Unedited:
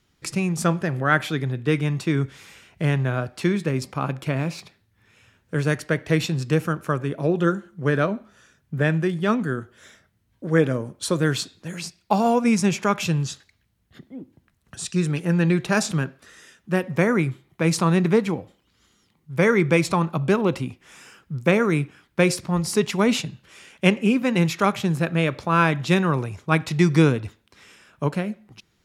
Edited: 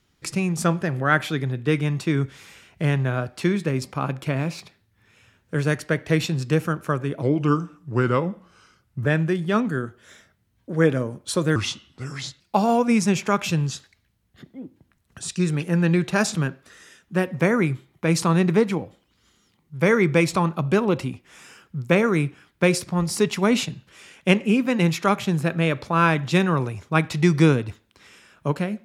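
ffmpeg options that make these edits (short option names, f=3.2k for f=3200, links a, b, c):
-filter_complex "[0:a]asplit=5[a][b][c][d][e];[a]atrim=end=7.224[f];[b]atrim=start=7.22:end=8.8,asetpts=PTS-STARTPTS,asetrate=37926,aresample=44100[g];[c]atrim=start=8.796:end=11.304[h];[d]atrim=start=11.3:end=11.97,asetpts=PTS-STARTPTS,asetrate=34839,aresample=44100,atrim=end_sample=37401,asetpts=PTS-STARTPTS[i];[e]atrim=start=11.966[j];[f][g]acrossfade=d=0.004:c1=hsin:c2=hsin[k];[k][h]acrossfade=d=0.004:c1=hsin:c2=hsin[l];[l][i]acrossfade=d=0.004:c1=hsin:c2=hsin[m];[m][j]acrossfade=d=0.004:c1=hsin:c2=hsin"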